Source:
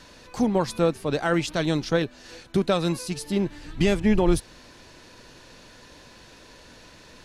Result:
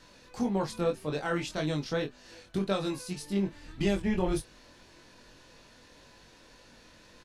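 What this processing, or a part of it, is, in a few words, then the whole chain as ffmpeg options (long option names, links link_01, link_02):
double-tracked vocal: -filter_complex "[0:a]asplit=2[link_01][link_02];[link_02]adelay=26,volume=-11dB[link_03];[link_01][link_03]amix=inputs=2:normalize=0,flanger=delay=20:depth=2.6:speed=1.8,volume=-4.5dB"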